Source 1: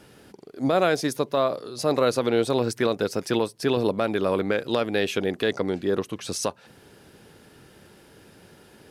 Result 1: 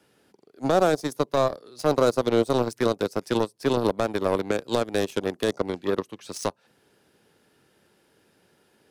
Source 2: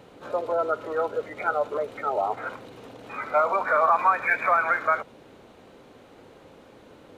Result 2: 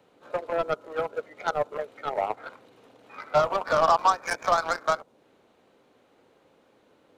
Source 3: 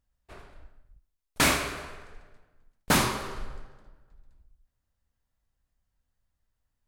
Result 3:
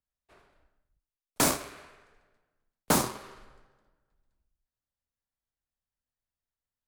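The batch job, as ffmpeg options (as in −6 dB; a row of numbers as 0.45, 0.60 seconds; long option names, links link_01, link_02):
-filter_complex "[0:a]lowshelf=frequency=120:gain=-11,aeval=exprs='0.355*(cos(1*acos(clip(val(0)/0.355,-1,1)))-cos(1*PI/2))+0.0398*(cos(7*acos(clip(val(0)/0.355,-1,1)))-cos(7*PI/2))':channel_layout=same,acrossover=split=180|1200|4600[link_01][link_02][link_03][link_04];[link_03]acompressor=threshold=-42dB:ratio=6[link_05];[link_01][link_02][link_05][link_04]amix=inputs=4:normalize=0,volume=3dB"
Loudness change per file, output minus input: −0.5, −2.0, −1.5 LU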